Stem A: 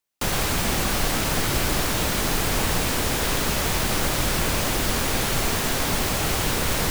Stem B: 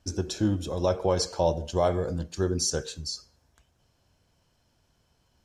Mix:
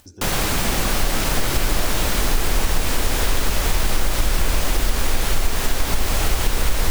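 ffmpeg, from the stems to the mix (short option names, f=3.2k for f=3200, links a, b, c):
-filter_complex "[0:a]asubboost=boost=6:cutoff=53,acompressor=threshold=-16dB:ratio=3,volume=2.5dB[a];[1:a]volume=-14dB[b];[a][b]amix=inputs=2:normalize=0,acompressor=mode=upward:threshold=-37dB:ratio=2.5"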